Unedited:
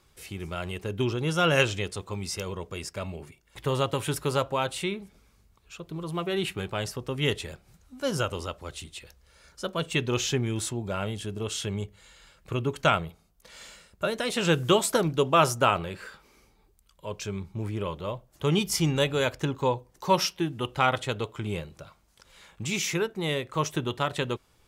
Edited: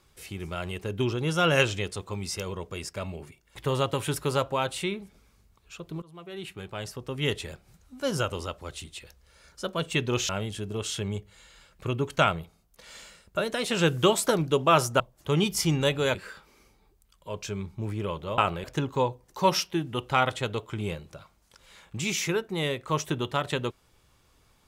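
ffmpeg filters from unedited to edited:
ffmpeg -i in.wav -filter_complex "[0:a]asplit=7[link_01][link_02][link_03][link_04][link_05][link_06][link_07];[link_01]atrim=end=6.02,asetpts=PTS-STARTPTS,afade=type=out:start_time=6.016:duration=0.004:curve=hsin:silence=0.0841395[link_08];[link_02]atrim=start=6.02:end=10.292,asetpts=PTS-STARTPTS,afade=type=in:duration=1.49:silence=0.0841395[link_09];[link_03]atrim=start=10.948:end=15.662[link_10];[link_04]atrim=start=18.148:end=19.302[link_11];[link_05]atrim=start=15.918:end=18.152[link_12];[link_06]atrim=start=15.658:end=15.922[link_13];[link_07]atrim=start=19.298[link_14];[link_08][link_09]concat=n=2:v=0:a=1[link_15];[link_15][link_10]acrossfade=duration=0.004:curve1=hsin:curve2=hsin[link_16];[link_16][link_11]acrossfade=duration=0.004:curve1=hsin:curve2=hsin[link_17];[link_17][link_12]acrossfade=duration=0.004:curve1=hsin:curve2=hsin[link_18];[link_18][link_13]acrossfade=duration=0.004:curve1=hsin:curve2=hsin[link_19];[link_19][link_14]acrossfade=duration=0.004:curve1=hsin:curve2=hsin" out.wav

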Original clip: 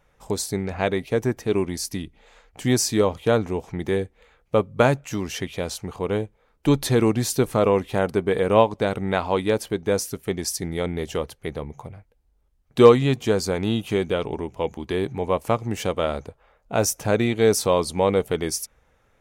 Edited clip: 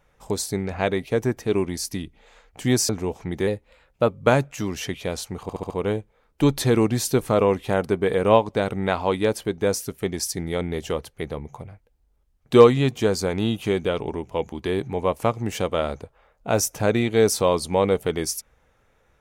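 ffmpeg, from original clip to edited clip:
ffmpeg -i in.wav -filter_complex "[0:a]asplit=8[link_01][link_02][link_03][link_04][link_05][link_06][link_07][link_08];[link_01]atrim=end=2.892[link_09];[link_02]atrim=start=3.368:end=3.954[link_10];[link_03]atrim=start=3.95:end=4.62,asetpts=PTS-STARTPTS,asetrate=47628,aresample=44100,atrim=end_sample=27358,asetpts=PTS-STARTPTS[link_11];[link_04]atrim=start=4.616:end=6.022[link_12];[link_05]atrim=start=5.948:end=6.022[link_13];[link_06]atrim=start=5.948:end=6.022[link_14];[link_07]atrim=start=5.948:end=6.022[link_15];[link_08]atrim=start=5.948[link_16];[link_09][link_10]acrossfade=duration=0.004:curve1=hsin:curve2=hsin[link_17];[link_17][link_11]acrossfade=duration=0.004:curve1=hsin:curve2=hsin[link_18];[link_18][link_12]acrossfade=duration=0.004:curve1=hsin:curve2=hsin[link_19];[link_19][link_13]acrossfade=duration=0.004:curve1=hsin:curve2=hsin[link_20];[link_20][link_14]acrossfade=duration=0.004:curve1=hsin:curve2=hsin[link_21];[link_21][link_15]acrossfade=duration=0.004:curve1=hsin:curve2=hsin[link_22];[link_22][link_16]acrossfade=duration=0.004:curve1=hsin:curve2=hsin" out.wav

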